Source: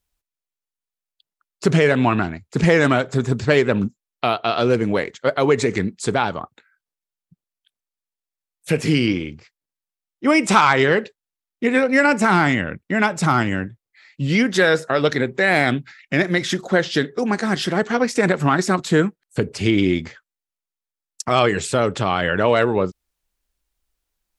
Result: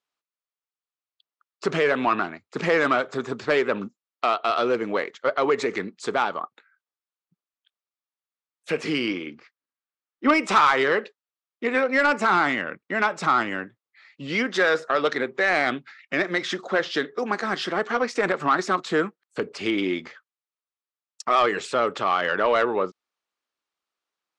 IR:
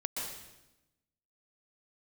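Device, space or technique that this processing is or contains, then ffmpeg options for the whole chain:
intercom: -filter_complex "[0:a]asettb=1/sr,asplit=3[a][b][c];[a]atrim=end=9.264[d];[b]atrim=start=9.26:end=10.34,asetpts=PTS-STARTPTS,afade=t=in:d=0.004:c=qsin,afade=t=out:st=1.076:d=0.004:c=qsin,equalizer=f=250:t=o:w=0.67:g=8,equalizer=f=1.6k:t=o:w=0.67:g=5,equalizer=f=10k:t=o:w=0.67:g=-11[e];[c]atrim=start=10.336[f];[d][e]acrossfade=d=0.004:c1=hsin:c2=qsin[g];[g][f]acrossfade=d=0.004:c1=qsin:c2=hsin,highpass=330,lowpass=5k,equalizer=f=1.2k:t=o:w=0.37:g=7,asoftclip=type=tanh:threshold=-7.5dB,volume=-3dB"

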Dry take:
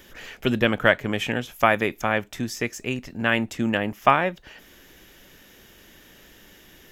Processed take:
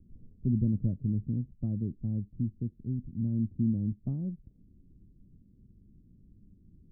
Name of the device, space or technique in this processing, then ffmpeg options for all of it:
the neighbour's flat through the wall: -af "lowpass=f=220:w=0.5412,lowpass=f=220:w=1.3066,equalizer=f=100:t=o:w=0.53:g=4.5"

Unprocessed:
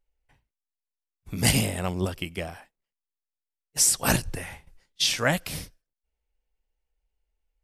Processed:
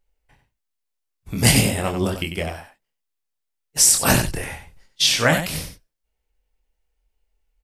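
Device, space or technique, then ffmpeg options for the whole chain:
slapback doubling: -filter_complex "[0:a]asplit=3[a][b][c];[b]adelay=25,volume=-5dB[d];[c]adelay=95,volume=-8dB[e];[a][d][e]amix=inputs=3:normalize=0,volume=5dB"

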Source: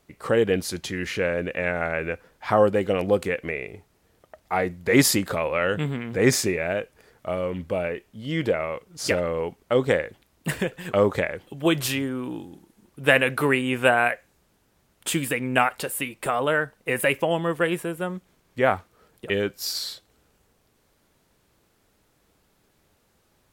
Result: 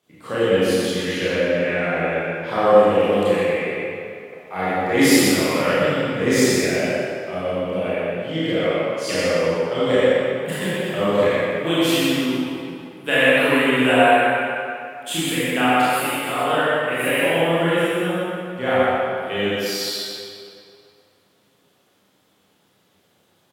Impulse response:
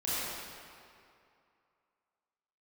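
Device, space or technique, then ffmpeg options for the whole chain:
PA in a hall: -filter_complex "[0:a]highpass=f=110:w=0.5412,highpass=f=110:w=1.3066,equalizer=f=3.3k:t=o:w=0.41:g=7,aecho=1:1:122:0.531[a];[1:a]atrim=start_sample=2205[b];[a][b]afir=irnorm=-1:irlink=0,volume=-4.5dB"

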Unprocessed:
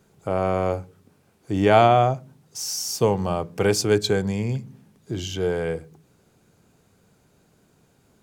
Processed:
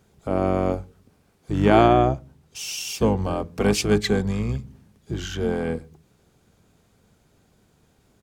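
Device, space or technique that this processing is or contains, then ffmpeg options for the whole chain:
octave pedal: -filter_complex "[0:a]asettb=1/sr,asplit=3[a][b][c];[a]atrim=end=1.934[d];[b]atrim=start=1.93:end=3.25,asetpts=PTS-STARTPTS,afade=t=in:d=0.004:c=qsin,afade=t=out:st=1.316:d=0.004:c=qsin,highshelf=f=4.3k:g=-3[e];[c]atrim=start=3.246[f];[d][e]acrossfade=d=0.004:c1=hsin:c2=qsin[g];[g][f]acrossfade=d=0.004:c1=qsin:c2=hsin,asplit=2[h][i];[i]asetrate=22050,aresample=44100,atempo=2,volume=-3dB[j];[h][j]amix=inputs=2:normalize=0,volume=-2dB"

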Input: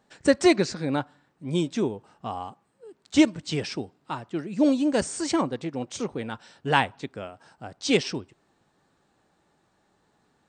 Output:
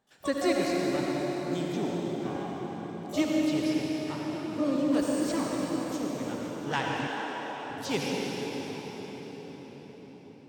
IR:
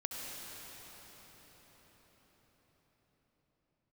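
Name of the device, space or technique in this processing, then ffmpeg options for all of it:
shimmer-style reverb: -filter_complex "[0:a]asplit=2[a][b];[b]asetrate=88200,aresample=44100,atempo=0.5,volume=-10dB[c];[a][c]amix=inputs=2:normalize=0[d];[1:a]atrim=start_sample=2205[e];[d][e]afir=irnorm=-1:irlink=0,asettb=1/sr,asplit=3[f][g][h];[f]atrim=end=7.074[i];[g]atrim=start=7.07:end=7.7,asetpts=PTS-STARTPTS,afade=t=in:d=0.004:c=qsin,afade=t=out:st=0.626:d=0.004:c=qsin,highpass=290[j];[h]atrim=start=7.696[k];[i][j]acrossfade=d=0.004:c1=hsin:c2=qsin[l];[l][k]acrossfade=d=0.004:c1=qsin:c2=hsin,volume=-7dB"

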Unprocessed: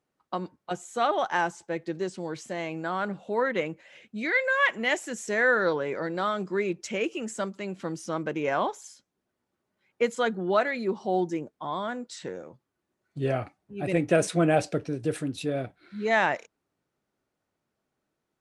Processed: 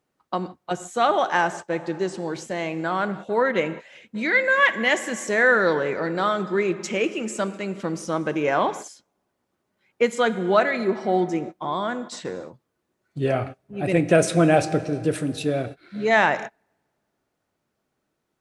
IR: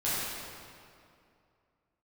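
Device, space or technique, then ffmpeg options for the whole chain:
keyed gated reverb: -filter_complex "[0:a]asplit=3[a][b][c];[1:a]atrim=start_sample=2205[d];[b][d]afir=irnorm=-1:irlink=0[e];[c]apad=whole_len=811843[f];[e][f]sidechaingate=range=-33dB:threshold=-41dB:ratio=16:detection=peak,volume=-21dB[g];[a][g]amix=inputs=2:normalize=0,volume=4.5dB"

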